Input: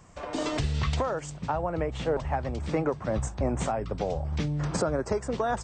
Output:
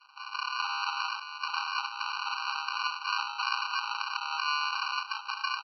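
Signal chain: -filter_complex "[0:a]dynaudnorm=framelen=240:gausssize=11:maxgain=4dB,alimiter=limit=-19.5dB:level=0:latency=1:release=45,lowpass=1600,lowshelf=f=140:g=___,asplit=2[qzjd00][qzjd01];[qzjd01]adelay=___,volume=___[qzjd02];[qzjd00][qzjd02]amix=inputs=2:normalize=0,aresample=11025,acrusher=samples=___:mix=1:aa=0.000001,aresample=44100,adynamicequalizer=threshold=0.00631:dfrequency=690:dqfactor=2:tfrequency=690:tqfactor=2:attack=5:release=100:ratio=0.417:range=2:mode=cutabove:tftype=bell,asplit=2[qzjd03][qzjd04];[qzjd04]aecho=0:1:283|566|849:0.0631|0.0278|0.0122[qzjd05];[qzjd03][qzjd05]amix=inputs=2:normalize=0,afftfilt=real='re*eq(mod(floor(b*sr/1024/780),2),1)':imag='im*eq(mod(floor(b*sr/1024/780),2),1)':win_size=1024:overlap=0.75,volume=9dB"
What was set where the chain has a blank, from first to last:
3, 36, -5dB, 25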